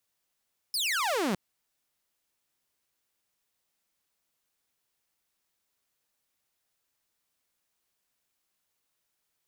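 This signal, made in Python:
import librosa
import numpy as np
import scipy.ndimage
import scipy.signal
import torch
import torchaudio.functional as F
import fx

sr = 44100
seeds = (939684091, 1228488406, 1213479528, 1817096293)

y = fx.laser_zap(sr, level_db=-23.5, start_hz=5300.0, end_hz=170.0, length_s=0.61, wave='saw')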